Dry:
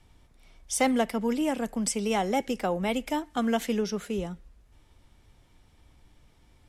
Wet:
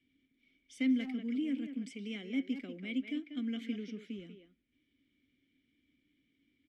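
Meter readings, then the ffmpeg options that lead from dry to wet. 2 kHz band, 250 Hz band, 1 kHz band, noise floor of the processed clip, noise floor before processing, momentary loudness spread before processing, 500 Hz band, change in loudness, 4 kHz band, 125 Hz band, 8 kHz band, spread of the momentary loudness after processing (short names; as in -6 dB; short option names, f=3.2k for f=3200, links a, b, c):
-10.0 dB, -5.5 dB, under -30 dB, -78 dBFS, -61 dBFS, 7 LU, -20.5 dB, -9.0 dB, -10.5 dB, -13.0 dB, under -25 dB, 12 LU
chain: -filter_complex "[0:a]asplit=3[a][b][c];[a]bandpass=f=270:t=q:w=8,volume=0dB[d];[b]bandpass=f=2.29k:t=q:w=8,volume=-6dB[e];[c]bandpass=f=3.01k:t=q:w=8,volume=-9dB[f];[d][e][f]amix=inputs=3:normalize=0,asplit=2[g][h];[h]adelay=190,highpass=300,lowpass=3.4k,asoftclip=type=hard:threshold=-31dB,volume=-7dB[i];[g][i]amix=inputs=2:normalize=0"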